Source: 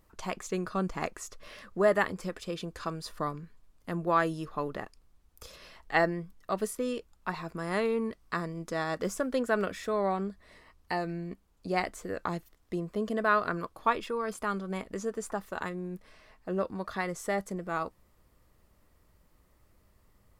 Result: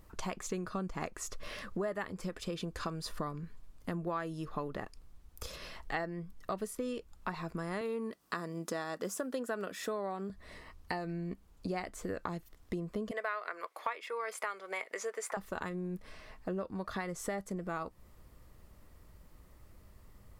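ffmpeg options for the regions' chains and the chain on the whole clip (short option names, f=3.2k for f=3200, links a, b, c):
-filter_complex "[0:a]asettb=1/sr,asplit=3[a][b][c];[a]atrim=end=7.814[d];[b]atrim=start=7.81:end=10.3,asetpts=PTS-STARTPTS,afade=t=in:d=0.004:c=qsin,afade=t=out:st=2.486:d=0.004:c=qsin,highpass=210,highshelf=f=10k:g=8.5,bandreject=f=2.2k:w=12[e];[c]atrim=start=10.296[f];[d][e]acrossfade=d=0.004:c1=hsin:c2=qsin[g];[g][f]acrossfade=d=0.004:c1=qsin:c2=hsin,asettb=1/sr,asplit=3[h][i][j];[h]atrim=end=13.114[k];[i]atrim=start=13.11:end=15.37,asetpts=PTS-STARTPTS,afade=t=in:d=0.004:c=qsin,afade=t=out:st=2.256:d=0.004:c=qsin,highpass=f=470:w=0.5412,highpass=f=470:w=1.3066,equalizer=f=2.1k:t=o:w=0.36:g=12.5[l];[j]atrim=start=15.366[m];[k][l]acrossfade=d=0.004:c1=hsin:c2=qsin[n];[n][m]acrossfade=d=0.004:c1=qsin:c2=hsin,lowshelf=f=190:g=4.5,acompressor=threshold=-39dB:ratio=5,volume=4dB"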